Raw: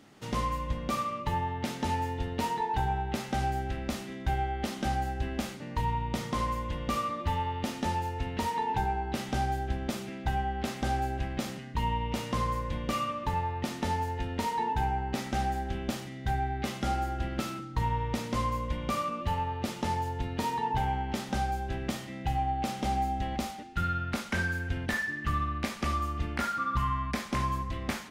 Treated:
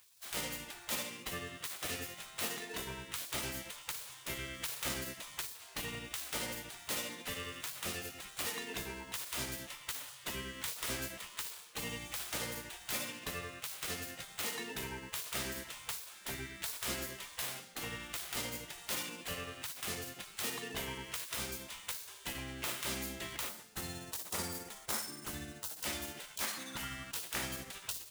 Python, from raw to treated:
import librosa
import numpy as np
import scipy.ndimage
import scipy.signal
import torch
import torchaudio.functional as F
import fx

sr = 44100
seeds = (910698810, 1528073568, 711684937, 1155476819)

y = scipy.ndimage.median_filter(x, 9, mode='constant')
y = fx.riaa(y, sr, side='recording')
y = fx.hum_notches(y, sr, base_hz=60, count=2)
y = fx.spec_gate(y, sr, threshold_db=-15, keep='weak')
y = fx.peak_eq(y, sr, hz=2600.0, db=-7.5, octaves=1.4, at=(23.49, 25.84))
y = fx.rider(y, sr, range_db=10, speed_s=2.0)